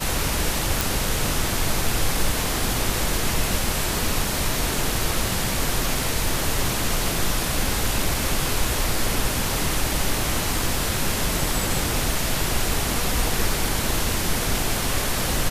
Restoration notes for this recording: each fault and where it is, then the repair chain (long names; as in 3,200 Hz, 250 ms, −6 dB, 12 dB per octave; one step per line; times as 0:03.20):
0:00.81: click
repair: click removal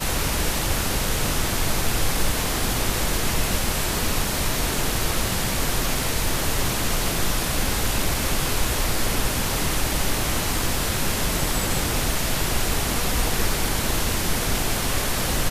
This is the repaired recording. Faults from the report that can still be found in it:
none of them is left